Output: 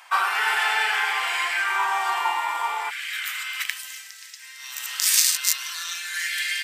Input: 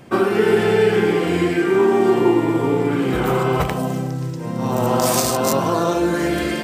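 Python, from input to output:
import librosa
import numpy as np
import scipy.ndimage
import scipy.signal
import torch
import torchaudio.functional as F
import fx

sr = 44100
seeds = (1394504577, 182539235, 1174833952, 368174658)

y = fx.cheby1_highpass(x, sr, hz=fx.steps((0.0, 880.0), (2.89, 1800.0)), order=4)
y = y * librosa.db_to_amplitude(4.5)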